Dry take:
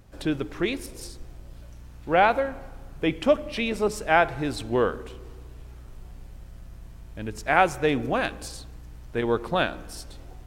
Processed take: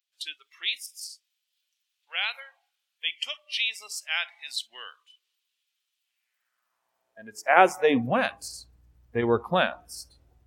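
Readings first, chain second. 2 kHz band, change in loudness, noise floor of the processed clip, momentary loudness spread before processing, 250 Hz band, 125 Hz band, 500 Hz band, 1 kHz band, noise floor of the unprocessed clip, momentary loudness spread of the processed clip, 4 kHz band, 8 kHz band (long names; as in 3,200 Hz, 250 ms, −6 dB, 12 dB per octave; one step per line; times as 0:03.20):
−1.0 dB, −1.5 dB, −81 dBFS, 20 LU, −4.5 dB, −6.0 dB, −3.5 dB, −2.5 dB, −45 dBFS, 20 LU, +5.5 dB, +1.5 dB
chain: noise reduction from a noise print of the clip's start 21 dB
high-pass filter sweep 3,200 Hz → 67 Hz, 0:06.00–0:08.54
level +1 dB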